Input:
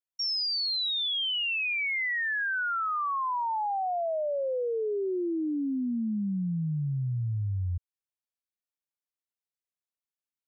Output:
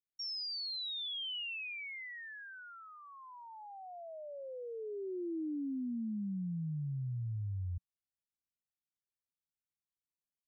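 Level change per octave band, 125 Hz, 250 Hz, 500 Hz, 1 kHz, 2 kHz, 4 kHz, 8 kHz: −8.0 dB, −8.0 dB, −13.5 dB, −21.5 dB, −16.0 dB, −10.5 dB, can't be measured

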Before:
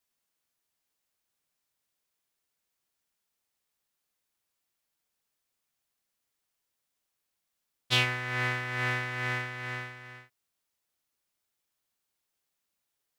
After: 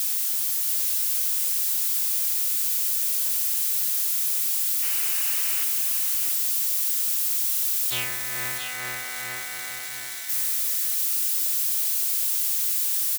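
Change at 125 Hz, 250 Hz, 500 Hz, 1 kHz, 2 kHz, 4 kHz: −11.0 dB, can't be measured, −3.5 dB, −1.5 dB, −0.5 dB, +7.0 dB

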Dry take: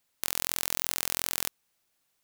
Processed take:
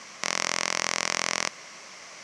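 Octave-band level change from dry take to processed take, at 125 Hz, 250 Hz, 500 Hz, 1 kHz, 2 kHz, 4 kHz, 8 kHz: +2.5, +6.0, +9.5, +10.0, +10.5, +5.5, +3.0 decibels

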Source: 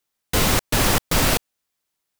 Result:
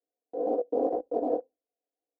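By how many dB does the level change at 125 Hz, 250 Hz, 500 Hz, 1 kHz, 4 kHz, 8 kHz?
below −35 dB, −8.0 dB, 0.0 dB, −9.5 dB, below −40 dB, below −40 dB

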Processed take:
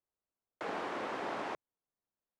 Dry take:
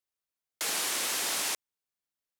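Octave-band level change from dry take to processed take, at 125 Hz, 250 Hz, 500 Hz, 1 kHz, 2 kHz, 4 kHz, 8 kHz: +2.5, +4.0, +3.5, +1.0, −7.5, −19.0, −32.0 decibels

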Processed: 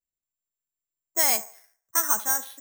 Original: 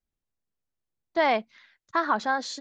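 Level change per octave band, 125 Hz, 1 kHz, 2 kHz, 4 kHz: can't be measured, −7.0 dB, −4.0 dB, +2.5 dB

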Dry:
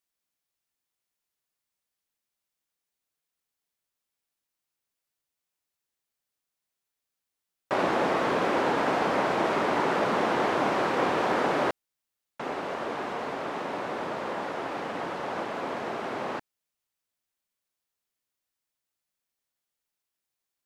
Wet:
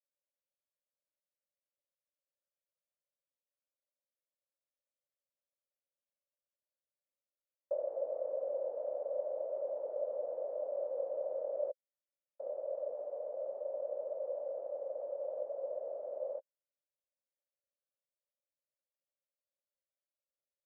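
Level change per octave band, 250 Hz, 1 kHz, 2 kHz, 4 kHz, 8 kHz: below −35 dB, −26.5 dB, below −40 dB, below −40 dB, below −30 dB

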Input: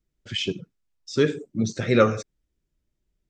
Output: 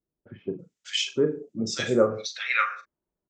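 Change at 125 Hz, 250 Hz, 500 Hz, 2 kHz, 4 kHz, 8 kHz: −9.0, −4.0, −1.5, +3.5, +1.5, +3.5 decibels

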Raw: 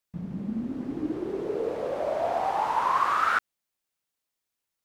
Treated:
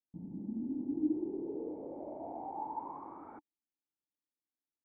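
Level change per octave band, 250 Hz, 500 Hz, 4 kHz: −4.0 dB, −13.5 dB, below −40 dB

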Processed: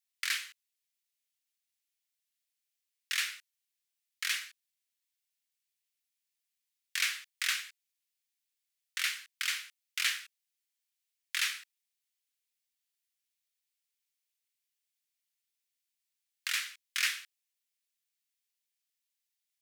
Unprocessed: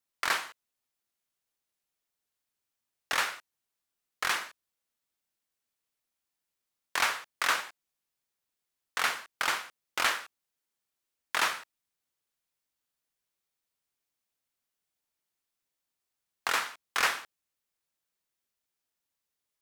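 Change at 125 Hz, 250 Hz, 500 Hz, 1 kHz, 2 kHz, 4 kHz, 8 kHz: can't be measured, below −40 dB, below −40 dB, −17.5 dB, −4.0 dB, 0.0 dB, 0.0 dB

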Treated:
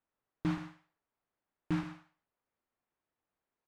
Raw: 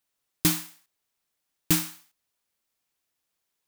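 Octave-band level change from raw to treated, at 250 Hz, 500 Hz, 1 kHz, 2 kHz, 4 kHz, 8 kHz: −5.5 dB, −6.5 dB, −5.0 dB, −10.5 dB, −21.5 dB, below −30 dB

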